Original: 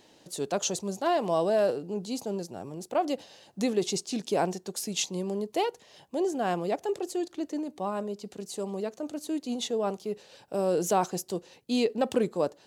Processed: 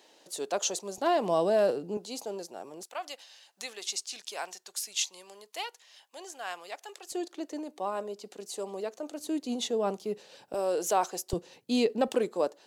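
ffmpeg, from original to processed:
ffmpeg -i in.wav -af "asetnsamples=nb_out_samples=441:pad=0,asendcmd='0.98 highpass f 160;1.97 highpass f 430;2.83 highpass f 1300;7.12 highpass f 380;9.2 highpass f 160;10.54 highpass f 460;11.33 highpass f 110;12.08 highpass f 320',highpass=410" out.wav

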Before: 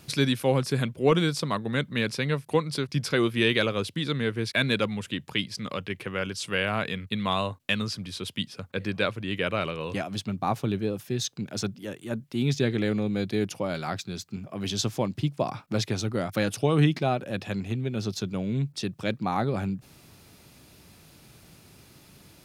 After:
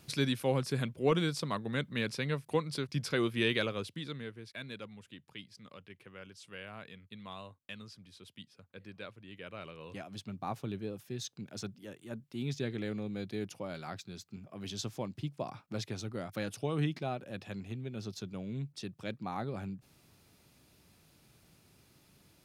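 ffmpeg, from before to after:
ffmpeg -i in.wav -af "volume=1.5dB,afade=type=out:start_time=3.52:duration=0.89:silence=0.237137,afade=type=in:start_time=9.4:duration=1:silence=0.375837" out.wav

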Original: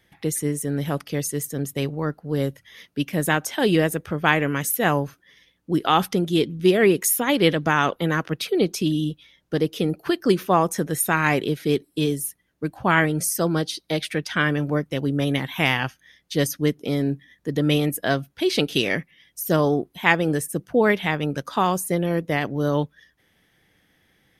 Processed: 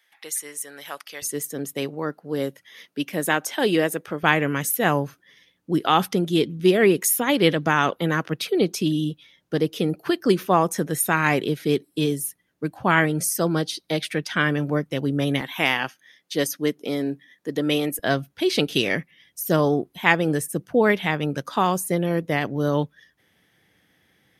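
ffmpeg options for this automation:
ffmpeg -i in.wav -af "asetnsamples=nb_out_samples=441:pad=0,asendcmd='1.22 highpass f 240;4.23 highpass f 100;15.41 highpass f 250;17.99 highpass f 79',highpass=1000" out.wav

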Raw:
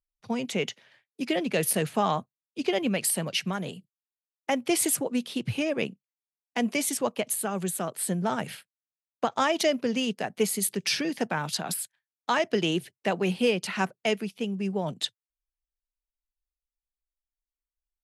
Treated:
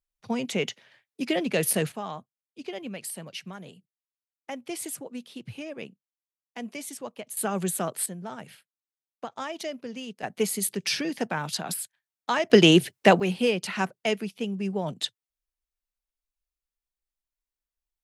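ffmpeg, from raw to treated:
ffmpeg -i in.wav -af "asetnsamples=nb_out_samples=441:pad=0,asendcmd='1.92 volume volume -10dB;7.37 volume volume 2dB;8.06 volume volume -10dB;10.23 volume volume -0.5dB;12.5 volume volume 10.5dB;13.2 volume volume 0dB',volume=1dB" out.wav

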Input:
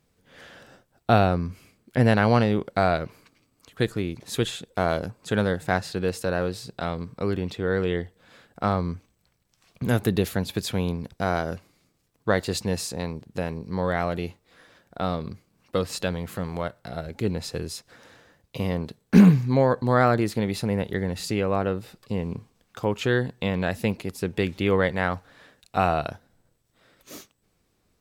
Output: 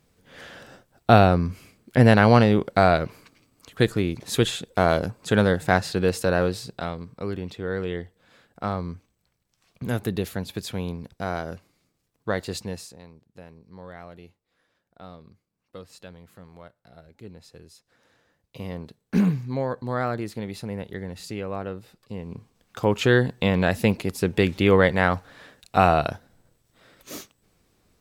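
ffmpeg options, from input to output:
ffmpeg -i in.wav -af "volume=25dB,afade=type=out:start_time=6.44:duration=0.55:silence=0.398107,afade=type=out:start_time=12.56:duration=0.43:silence=0.237137,afade=type=in:start_time=17.74:duration=1:silence=0.334965,afade=type=in:start_time=22.26:duration=0.7:silence=0.266073" out.wav

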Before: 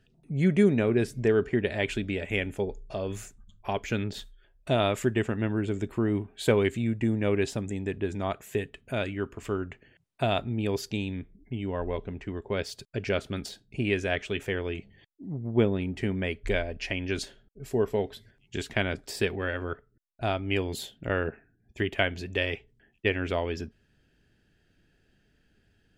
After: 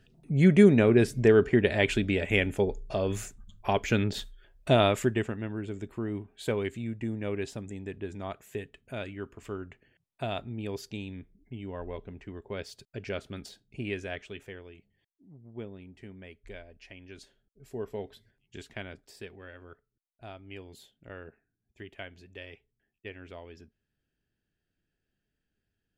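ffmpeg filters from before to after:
ffmpeg -i in.wav -af "volume=12.5dB,afade=type=out:start_time=4.71:duration=0.7:silence=0.298538,afade=type=out:start_time=13.9:duration=0.82:silence=0.298538,afade=type=in:start_time=17.15:duration=0.95:silence=0.354813,afade=type=out:start_time=18.1:duration=1.13:silence=0.398107" out.wav

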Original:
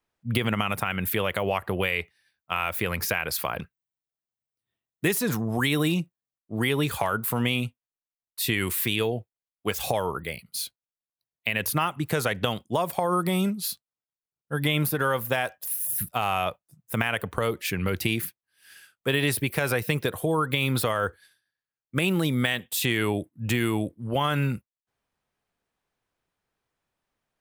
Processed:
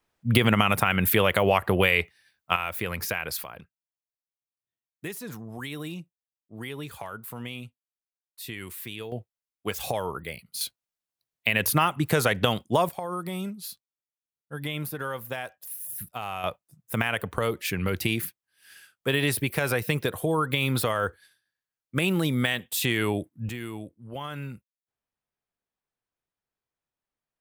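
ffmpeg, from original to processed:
ffmpeg -i in.wav -af "asetnsamples=nb_out_samples=441:pad=0,asendcmd='2.56 volume volume -3dB;3.44 volume volume -12dB;9.12 volume volume -3dB;10.61 volume volume 3dB;12.89 volume volume -8dB;16.44 volume volume -0.5dB;23.49 volume volume -11dB',volume=5dB" out.wav

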